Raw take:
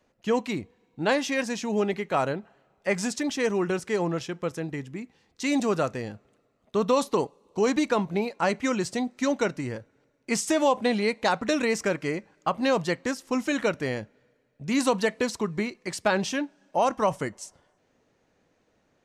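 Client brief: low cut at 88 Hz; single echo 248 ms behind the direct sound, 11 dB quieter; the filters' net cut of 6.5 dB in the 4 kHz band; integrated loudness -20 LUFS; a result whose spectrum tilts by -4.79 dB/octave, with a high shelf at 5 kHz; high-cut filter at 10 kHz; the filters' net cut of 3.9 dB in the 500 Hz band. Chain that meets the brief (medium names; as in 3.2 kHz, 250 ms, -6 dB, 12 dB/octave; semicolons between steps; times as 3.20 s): high-pass 88 Hz; low-pass 10 kHz; peaking EQ 500 Hz -4.5 dB; peaking EQ 4 kHz -4.5 dB; treble shelf 5 kHz -8 dB; delay 248 ms -11 dB; trim +9.5 dB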